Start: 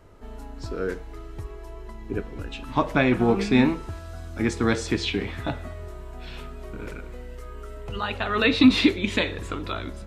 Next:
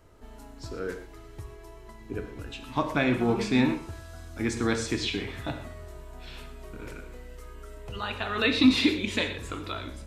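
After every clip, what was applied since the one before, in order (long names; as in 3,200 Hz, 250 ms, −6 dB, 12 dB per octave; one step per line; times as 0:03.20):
high-shelf EQ 4,000 Hz +6.5 dB
reverb whose tail is shaped and stops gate 150 ms flat, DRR 7.5 dB
level −5.5 dB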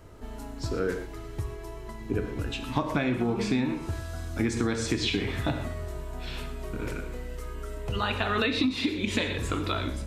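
parametric band 130 Hz +3.5 dB 2.9 octaves
downward compressor 16 to 1, threshold −28 dBFS, peak gain reduction 17.5 dB
level +5.5 dB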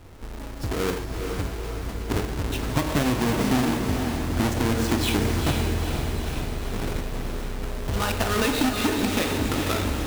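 each half-wave held at its own peak
feedback delay with all-pass diffusion 461 ms, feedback 60%, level −5 dB
level −1.5 dB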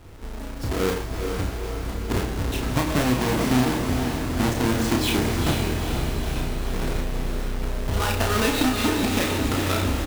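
double-tracking delay 32 ms −4 dB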